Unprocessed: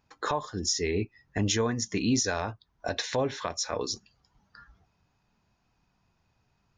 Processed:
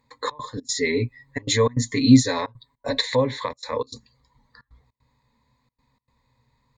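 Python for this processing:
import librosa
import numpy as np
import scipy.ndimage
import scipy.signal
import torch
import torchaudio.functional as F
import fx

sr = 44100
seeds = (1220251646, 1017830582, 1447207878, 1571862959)

y = fx.ripple_eq(x, sr, per_octave=1.0, db=17)
y = fx.step_gate(y, sr, bpm=153, pattern='xxx.xx.xxxx', floor_db=-24.0, edge_ms=4.5)
y = fx.comb(y, sr, ms=7.2, depth=0.96, at=(0.57, 3.01))
y = y * 10.0 ** (1.5 / 20.0)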